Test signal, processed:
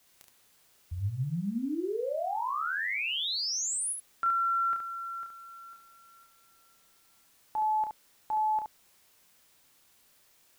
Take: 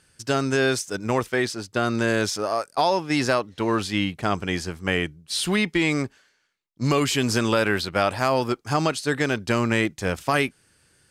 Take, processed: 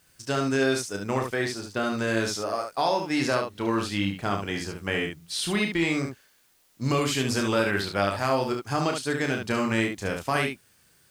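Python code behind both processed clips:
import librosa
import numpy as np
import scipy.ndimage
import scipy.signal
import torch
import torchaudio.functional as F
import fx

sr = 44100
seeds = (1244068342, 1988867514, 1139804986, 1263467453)

y = fx.dmg_noise_colour(x, sr, seeds[0], colour='white', level_db=-61.0)
y = fx.room_early_taps(y, sr, ms=(30, 71), db=(-6.0, -5.5))
y = F.gain(torch.from_numpy(y), -5.0).numpy()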